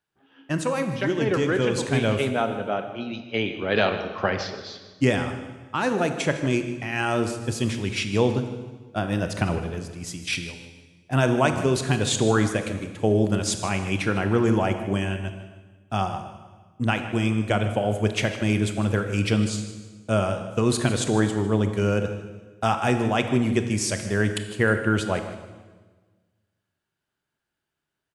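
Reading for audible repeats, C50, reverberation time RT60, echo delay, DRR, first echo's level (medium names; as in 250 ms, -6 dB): 2, 8.0 dB, 1.4 s, 155 ms, 7.0 dB, -15.0 dB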